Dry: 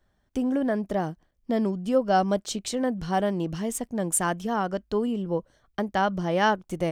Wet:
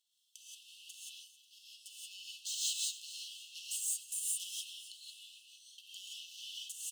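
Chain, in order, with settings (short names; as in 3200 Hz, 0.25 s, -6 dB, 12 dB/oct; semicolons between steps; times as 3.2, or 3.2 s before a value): bell 8000 Hz +7 dB 2.1 oct; notch 5600 Hz, Q 15; in parallel at -0.5 dB: level quantiser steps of 11 dB; on the sum: transient shaper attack -5 dB, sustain +7 dB; limiter -18.5 dBFS, peak gain reduction 13.5 dB; overloaded stage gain 28.5 dB; brick-wall FIR high-pass 2600 Hz; on a send: feedback echo 0.27 s, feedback 48%, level -16 dB; on the sum: non-linear reverb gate 0.2 s rising, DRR -6 dB; gain -8 dB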